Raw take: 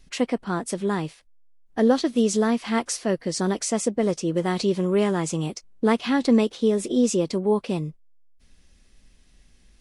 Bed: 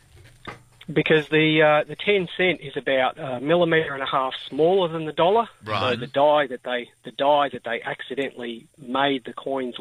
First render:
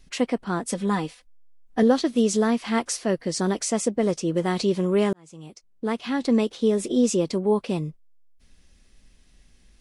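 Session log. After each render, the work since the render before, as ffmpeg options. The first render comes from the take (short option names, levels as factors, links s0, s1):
-filter_complex "[0:a]asettb=1/sr,asplit=3[s0][s1][s2];[s0]atrim=end=0.684[s3];[s1]atrim=start=0.68:end=1.83,asetpts=PTS-STARTPTS,afade=t=in:d=0.004:c=qsin,afade=t=out:st=1.146:d=0.004:c=qsin,aecho=1:1:4:0.65,atrim=end_sample=50715[s4];[s2]atrim=start=1.826[s5];[s3][s4]acrossfade=d=0.004:c1=hsin:c2=qsin[s6];[s6][s5]acrossfade=d=0.004:c1=qsin:c2=hsin,asplit=2[s7][s8];[s7]atrim=end=5.13,asetpts=PTS-STARTPTS,afade=t=out:st=5.126:d=0.004:c=hsin[s9];[s8]atrim=start=5.13,asetpts=PTS-STARTPTS,afade=t=in:d=1.59[s10];[s9][s10]concat=n=2:v=0:a=1"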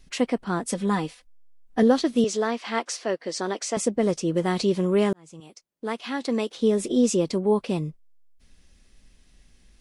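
-filter_complex "[0:a]asettb=1/sr,asplit=3[s0][s1][s2];[s0]atrim=end=2.244[s3];[s1]atrim=start=2.24:end=3.77,asetpts=PTS-STARTPTS,afade=t=in:d=0.004:c=qsin,afade=t=out:st=1.526:d=0.004:c=qsin,highpass=370,lowpass=6400[s4];[s2]atrim=start=3.766[s5];[s3][s4]acrossfade=d=0.004:c1=hsin:c2=qsin[s6];[s6][s5]acrossfade=d=0.004:c1=qsin:c2=hsin,asettb=1/sr,asplit=3[s7][s8][s9];[s7]atrim=end=5.404[s10];[s8]atrim=start=5.4:end=6.55,asetpts=PTS-STARTPTS,afade=t=in:d=0.004:c=qsin,afade=t=out:st=1.146:d=0.004:c=qsin,highpass=f=420:p=1[s11];[s9]atrim=start=6.546[s12];[s10][s11]acrossfade=d=0.004:c1=hsin:c2=qsin[s13];[s13][s12]acrossfade=d=0.004:c1=qsin:c2=hsin"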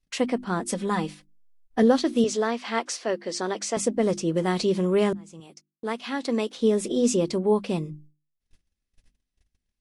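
-af "agate=range=0.0447:threshold=0.00355:ratio=16:detection=peak,bandreject=f=50:t=h:w=6,bandreject=f=100:t=h:w=6,bandreject=f=150:t=h:w=6,bandreject=f=200:t=h:w=6,bandreject=f=250:t=h:w=6,bandreject=f=300:t=h:w=6,bandreject=f=350:t=h:w=6"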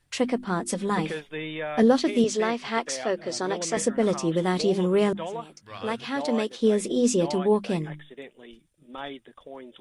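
-filter_complex "[1:a]volume=0.168[s0];[0:a][s0]amix=inputs=2:normalize=0"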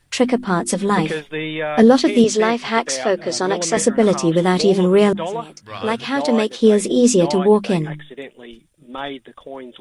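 -af "volume=2.66,alimiter=limit=0.794:level=0:latency=1"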